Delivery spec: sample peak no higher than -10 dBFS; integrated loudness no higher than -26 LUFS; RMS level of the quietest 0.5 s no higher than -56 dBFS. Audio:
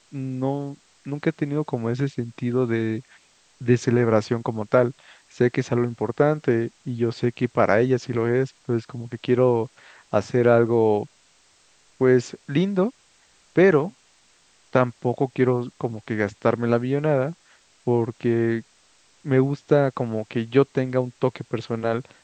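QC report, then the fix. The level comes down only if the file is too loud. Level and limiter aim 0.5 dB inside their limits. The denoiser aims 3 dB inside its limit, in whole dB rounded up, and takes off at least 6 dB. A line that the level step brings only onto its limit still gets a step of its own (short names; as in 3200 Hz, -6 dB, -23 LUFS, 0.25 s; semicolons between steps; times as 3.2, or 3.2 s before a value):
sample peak -3.5 dBFS: fail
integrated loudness -23.0 LUFS: fail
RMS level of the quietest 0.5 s -59 dBFS: OK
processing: gain -3.5 dB; limiter -10.5 dBFS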